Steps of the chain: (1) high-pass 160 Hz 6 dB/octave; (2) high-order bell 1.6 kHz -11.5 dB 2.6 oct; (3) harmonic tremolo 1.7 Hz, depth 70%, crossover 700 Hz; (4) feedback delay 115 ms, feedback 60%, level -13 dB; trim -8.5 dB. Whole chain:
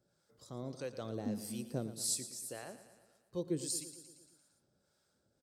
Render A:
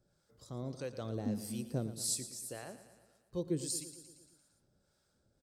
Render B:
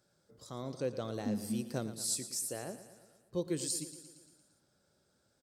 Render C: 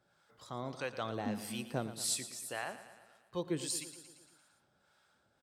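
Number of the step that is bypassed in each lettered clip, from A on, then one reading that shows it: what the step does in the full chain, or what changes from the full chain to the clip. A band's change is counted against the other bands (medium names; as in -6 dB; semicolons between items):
1, 125 Hz band +4.0 dB; 3, loudness change +2.5 LU; 2, 2 kHz band +10.5 dB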